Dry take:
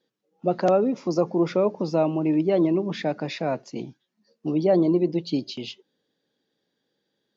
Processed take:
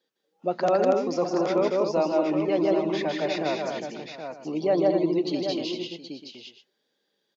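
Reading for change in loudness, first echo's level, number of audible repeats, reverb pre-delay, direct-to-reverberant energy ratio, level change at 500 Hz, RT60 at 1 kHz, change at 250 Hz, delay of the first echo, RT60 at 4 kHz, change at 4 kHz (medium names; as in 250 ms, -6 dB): -1.5 dB, -3.5 dB, 5, no reverb, no reverb, 0.0 dB, no reverb, -3.0 dB, 156 ms, no reverb, +3.0 dB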